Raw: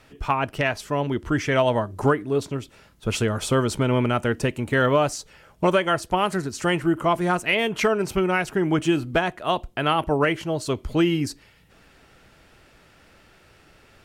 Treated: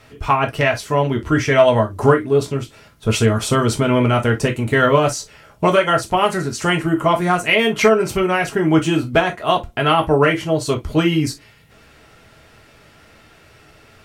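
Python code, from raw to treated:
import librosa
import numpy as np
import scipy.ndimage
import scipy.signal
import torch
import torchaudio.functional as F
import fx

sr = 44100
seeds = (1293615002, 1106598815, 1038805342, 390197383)

y = fx.rev_gated(x, sr, seeds[0], gate_ms=80, shape='falling', drr_db=2.0)
y = y * librosa.db_to_amplitude(4.0)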